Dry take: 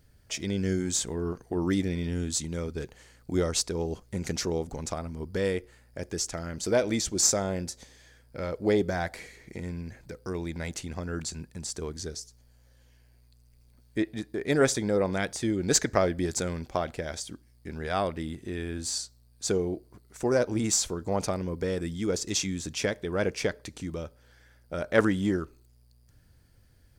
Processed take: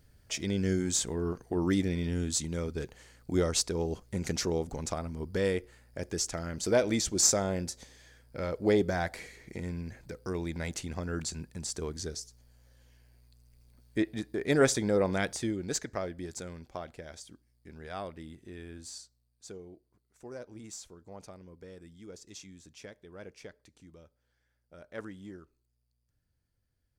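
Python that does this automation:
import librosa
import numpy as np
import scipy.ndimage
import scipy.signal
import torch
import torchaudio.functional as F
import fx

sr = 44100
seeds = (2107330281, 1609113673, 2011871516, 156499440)

y = fx.gain(x, sr, db=fx.line((15.33, -1.0), (15.79, -11.0), (18.73, -11.0), (19.57, -19.0)))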